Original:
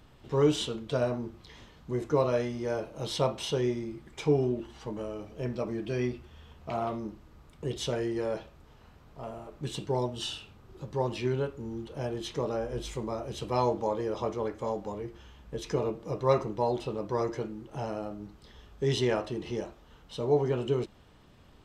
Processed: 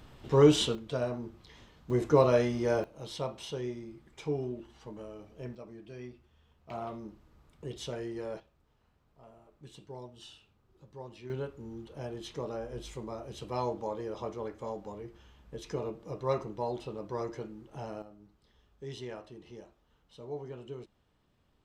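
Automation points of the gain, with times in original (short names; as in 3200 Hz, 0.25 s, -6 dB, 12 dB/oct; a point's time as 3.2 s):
+3.5 dB
from 0.75 s -4 dB
from 1.9 s +3 dB
from 2.84 s -8 dB
from 5.55 s -14.5 dB
from 6.7 s -7 dB
from 8.4 s -15.5 dB
from 11.3 s -6 dB
from 18.02 s -14.5 dB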